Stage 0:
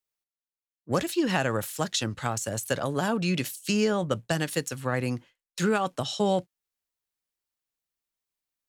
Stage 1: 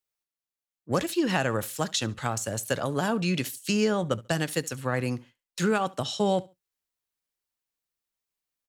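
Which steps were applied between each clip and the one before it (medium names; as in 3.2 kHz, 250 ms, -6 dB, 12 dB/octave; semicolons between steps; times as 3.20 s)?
feedback delay 70 ms, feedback 22%, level -22 dB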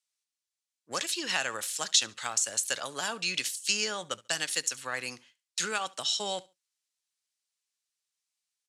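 frequency weighting ITU-R 468; trim -5.5 dB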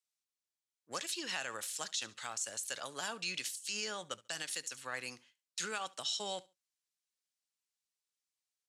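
peak limiter -19.5 dBFS, peak gain reduction 9.5 dB; trim -6.5 dB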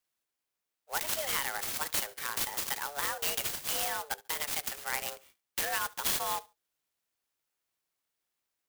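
frequency shift +290 Hz; sampling jitter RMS 0.068 ms; trim +7 dB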